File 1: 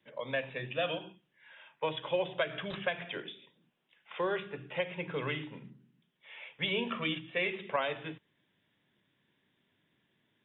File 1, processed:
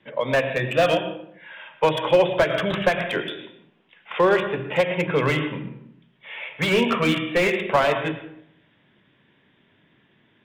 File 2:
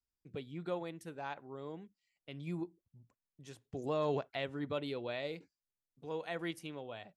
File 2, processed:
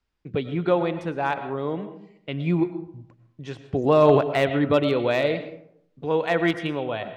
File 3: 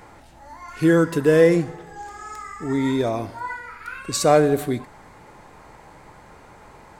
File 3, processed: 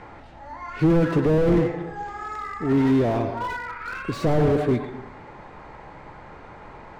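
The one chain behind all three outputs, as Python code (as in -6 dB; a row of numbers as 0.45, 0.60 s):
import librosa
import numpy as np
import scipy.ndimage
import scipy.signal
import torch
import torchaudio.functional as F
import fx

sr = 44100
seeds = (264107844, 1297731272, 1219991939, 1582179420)

y = scipy.signal.sosfilt(scipy.signal.butter(2, 3200.0, 'lowpass', fs=sr, output='sos'), x)
y = fx.rev_freeverb(y, sr, rt60_s=0.71, hf_ratio=0.5, predelay_ms=70, drr_db=10.5)
y = fx.slew_limit(y, sr, full_power_hz=36.0)
y = y * 10.0 ** (-24 / 20.0) / np.sqrt(np.mean(np.square(y)))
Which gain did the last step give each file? +14.5, +17.5, +3.5 dB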